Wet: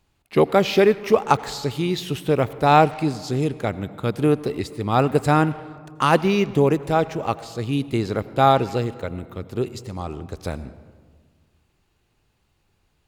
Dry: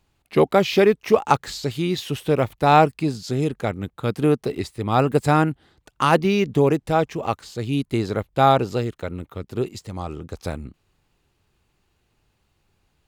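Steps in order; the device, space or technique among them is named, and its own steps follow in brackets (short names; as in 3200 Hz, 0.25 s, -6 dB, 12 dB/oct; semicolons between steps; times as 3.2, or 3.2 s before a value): saturated reverb return (on a send at -14 dB: reverb RT60 1.6 s, pre-delay 78 ms + soft clip -17 dBFS, distortion -10 dB)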